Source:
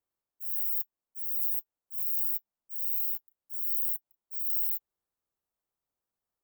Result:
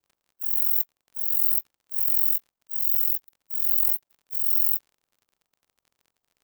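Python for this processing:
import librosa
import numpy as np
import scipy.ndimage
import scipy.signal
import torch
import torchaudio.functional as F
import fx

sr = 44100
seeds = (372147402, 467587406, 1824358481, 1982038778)

p1 = fx.spec_quant(x, sr, step_db=15)
p2 = fx.peak_eq(p1, sr, hz=11000.0, db=-12.0, octaves=0.22)
p3 = fx.quant_companded(p2, sr, bits=4)
p4 = p2 + (p3 * 10.0 ** (-8.5 / 20.0))
p5 = fx.dmg_crackle(p4, sr, seeds[0], per_s=52.0, level_db=-53.0)
p6 = p5 * np.sin(2.0 * np.pi * 22.0 * np.arange(len(p5)) / sr)
y = p6 * 10.0 ** (8.5 / 20.0)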